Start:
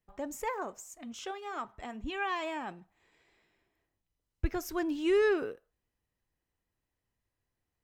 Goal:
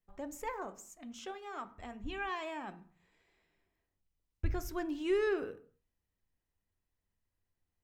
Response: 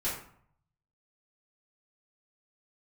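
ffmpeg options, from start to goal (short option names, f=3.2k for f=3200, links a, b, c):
-filter_complex "[0:a]asplit=2[a][b];[b]bass=f=250:g=12,treble=f=4k:g=-7[c];[1:a]atrim=start_sample=2205,afade=t=out:st=0.32:d=0.01,atrim=end_sample=14553[d];[c][d]afir=irnorm=-1:irlink=0,volume=-17.5dB[e];[a][e]amix=inputs=2:normalize=0,volume=-5.5dB"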